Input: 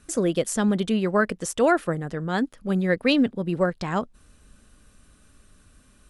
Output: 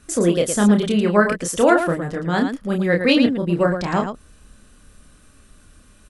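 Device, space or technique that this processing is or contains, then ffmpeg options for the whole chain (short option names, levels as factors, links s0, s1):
slapback doubling: -filter_complex "[0:a]asplit=3[s0][s1][s2];[s1]adelay=29,volume=0.631[s3];[s2]adelay=112,volume=0.422[s4];[s0][s3][s4]amix=inputs=3:normalize=0,volume=1.5"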